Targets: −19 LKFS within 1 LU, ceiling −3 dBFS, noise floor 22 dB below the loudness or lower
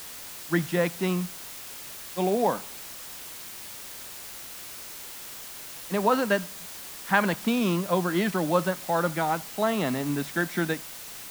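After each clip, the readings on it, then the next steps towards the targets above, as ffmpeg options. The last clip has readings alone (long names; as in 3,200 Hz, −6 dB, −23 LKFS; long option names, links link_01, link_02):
background noise floor −41 dBFS; target noise floor −51 dBFS; integrated loudness −28.5 LKFS; sample peak −6.0 dBFS; target loudness −19.0 LKFS
→ -af "afftdn=noise_reduction=10:noise_floor=-41"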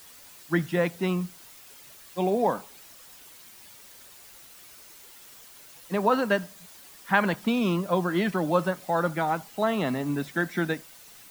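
background noise floor −50 dBFS; integrated loudness −27.0 LKFS; sample peak −6.0 dBFS; target loudness −19.0 LKFS
→ -af "volume=8dB,alimiter=limit=-3dB:level=0:latency=1"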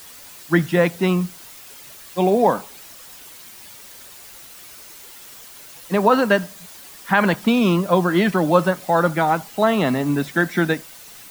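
integrated loudness −19.5 LKFS; sample peak −3.0 dBFS; background noise floor −42 dBFS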